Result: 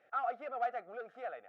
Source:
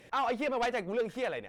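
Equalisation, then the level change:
pair of resonant band-passes 980 Hz, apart 0.86 octaves
0.0 dB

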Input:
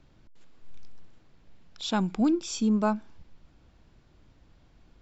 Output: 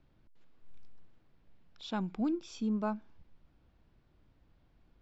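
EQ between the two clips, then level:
high-frequency loss of the air 130 metres
−8.0 dB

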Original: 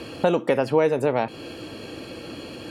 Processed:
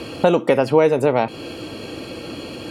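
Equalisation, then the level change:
notch filter 1,700 Hz, Q 11
+5.0 dB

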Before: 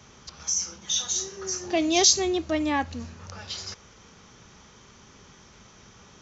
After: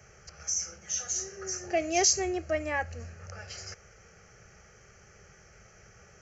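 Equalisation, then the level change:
phaser with its sweep stopped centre 990 Hz, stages 6
0.0 dB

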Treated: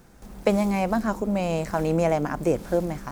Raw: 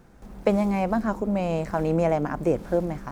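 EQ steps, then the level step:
high-shelf EQ 3,400 Hz +9.5 dB
0.0 dB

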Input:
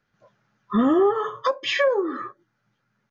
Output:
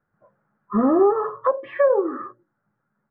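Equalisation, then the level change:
mains-hum notches 60/120/180/240/300/360/420/480/540 Hz
dynamic equaliser 600 Hz, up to +5 dB, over −33 dBFS, Q 1.2
low-pass filter 1,500 Hz 24 dB per octave
0.0 dB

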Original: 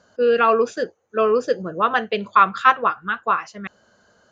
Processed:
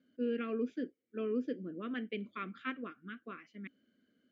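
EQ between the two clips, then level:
dynamic equaliser 3,700 Hz, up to −4 dB, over −34 dBFS, Q 0.79
formant filter i
high-shelf EQ 2,100 Hz −10 dB
+2.0 dB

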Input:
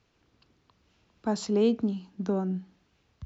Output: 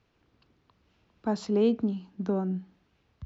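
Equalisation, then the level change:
high-frequency loss of the air 56 metres
high-shelf EQ 5,600 Hz −6 dB
0.0 dB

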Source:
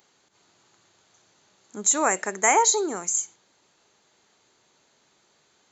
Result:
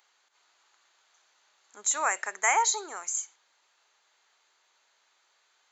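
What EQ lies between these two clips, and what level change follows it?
high-pass filter 1,000 Hz 12 dB per octave
high-shelf EQ 4,400 Hz −8.5 dB
0.0 dB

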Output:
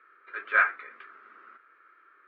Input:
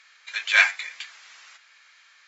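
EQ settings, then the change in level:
transistor ladder low-pass 1,400 Hz, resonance 75%
low shelf with overshoot 550 Hz +14 dB, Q 3
+8.0 dB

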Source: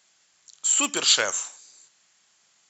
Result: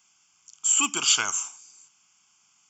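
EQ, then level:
phaser with its sweep stopped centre 2,700 Hz, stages 8
+1.5 dB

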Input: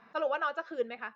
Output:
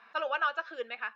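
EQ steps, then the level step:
resonant band-pass 2,500 Hz, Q 0.76
notch filter 2,000 Hz, Q 11
+6.5 dB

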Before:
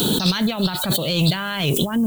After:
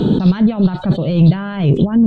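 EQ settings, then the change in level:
head-to-tape spacing loss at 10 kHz 40 dB
low-shelf EQ 470 Hz +9.5 dB
+1.5 dB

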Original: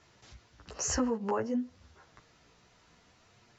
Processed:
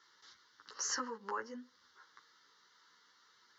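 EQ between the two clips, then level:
high-pass filter 640 Hz 12 dB per octave
phaser with its sweep stopped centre 2,500 Hz, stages 6
+1.0 dB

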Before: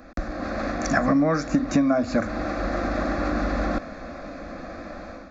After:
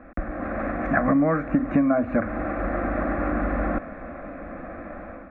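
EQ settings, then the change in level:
inverse Chebyshev low-pass filter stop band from 4,600 Hz, stop band 40 dB
0.0 dB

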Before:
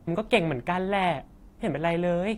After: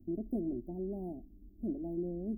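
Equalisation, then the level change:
inverse Chebyshev band-stop filter 1,400–5,900 Hz, stop band 70 dB
phaser with its sweep stopped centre 730 Hz, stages 8
−2.5 dB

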